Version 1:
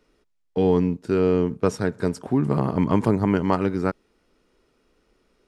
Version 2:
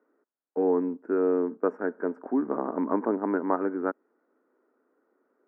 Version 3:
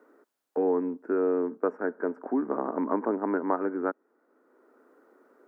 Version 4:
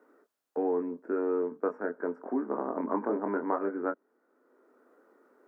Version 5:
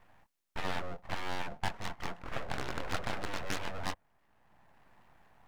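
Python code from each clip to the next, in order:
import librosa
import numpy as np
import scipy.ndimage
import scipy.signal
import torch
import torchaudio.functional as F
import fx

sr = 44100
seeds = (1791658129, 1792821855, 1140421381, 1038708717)

y1 = scipy.signal.sosfilt(scipy.signal.ellip(3, 1.0, 40, [260.0, 1600.0], 'bandpass', fs=sr, output='sos'), x)
y1 = y1 * 10.0 ** (-3.0 / 20.0)
y2 = fx.low_shelf(y1, sr, hz=150.0, db=-8.0)
y2 = fx.band_squash(y2, sr, depth_pct=40)
y3 = fx.chorus_voices(y2, sr, voices=4, hz=0.38, base_ms=24, depth_ms=1.2, mix_pct=35)
y4 = fx.cheby_harmonics(y3, sr, harmonics=(7,), levels_db=(-6,), full_scale_db=-15.5)
y4 = np.abs(y4)
y4 = y4 * 10.0 ** (-5.5 / 20.0)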